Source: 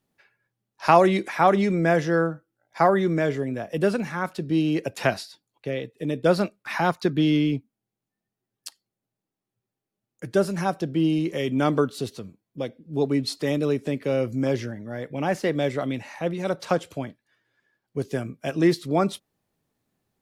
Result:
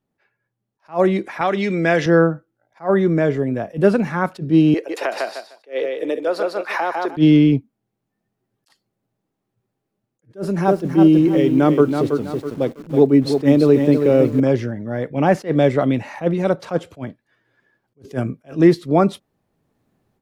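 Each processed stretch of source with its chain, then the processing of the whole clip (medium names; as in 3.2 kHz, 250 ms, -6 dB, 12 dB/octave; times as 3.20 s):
1.41–2.06 s: compression 1.5:1, threshold -24 dBFS + frequency weighting D
4.74–7.17 s: high-pass 380 Hz 24 dB/octave + feedback delay 151 ms, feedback 18%, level -5 dB + compression 5:1, threshold -26 dBFS
10.35–14.40 s: block-companded coder 7-bit + peaking EQ 350 Hz +5 dB 1 oct + bit-crushed delay 326 ms, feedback 35%, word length 7-bit, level -6 dB
whole clip: treble shelf 2.3 kHz -11 dB; level rider gain up to 11.5 dB; attacks held to a fixed rise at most 290 dB/s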